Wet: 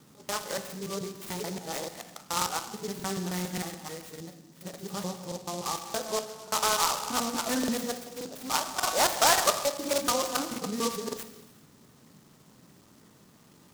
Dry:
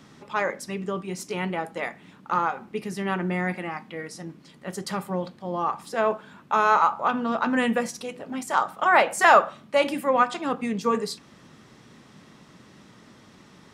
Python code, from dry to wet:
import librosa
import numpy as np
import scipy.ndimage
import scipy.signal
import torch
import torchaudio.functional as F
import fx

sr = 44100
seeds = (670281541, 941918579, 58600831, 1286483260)

y = fx.local_reverse(x, sr, ms=144.0)
y = fx.rev_gated(y, sr, seeds[0], gate_ms=440, shape='falling', drr_db=6.5)
y = fx.buffer_crackle(y, sr, first_s=0.63, period_s=0.58, block=2048, kind='repeat')
y = fx.noise_mod_delay(y, sr, seeds[1], noise_hz=5200.0, depth_ms=0.11)
y = y * librosa.db_to_amplitude(-6.5)